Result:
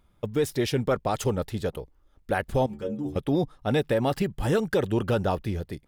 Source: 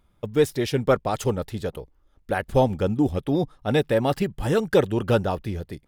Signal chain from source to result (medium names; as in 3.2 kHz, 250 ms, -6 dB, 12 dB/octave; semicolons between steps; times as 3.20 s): peak limiter -15 dBFS, peak gain reduction 8 dB; 2.66–3.16 s: inharmonic resonator 68 Hz, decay 0.41 s, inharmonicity 0.008